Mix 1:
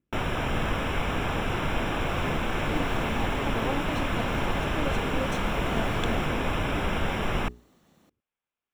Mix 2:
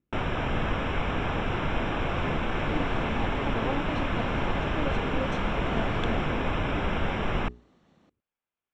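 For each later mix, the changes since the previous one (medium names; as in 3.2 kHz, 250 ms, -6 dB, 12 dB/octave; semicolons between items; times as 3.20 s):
master: add distance through air 130 m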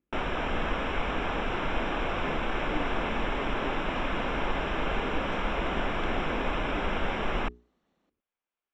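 second sound -10.5 dB; master: add peaking EQ 110 Hz -12.5 dB 1.2 oct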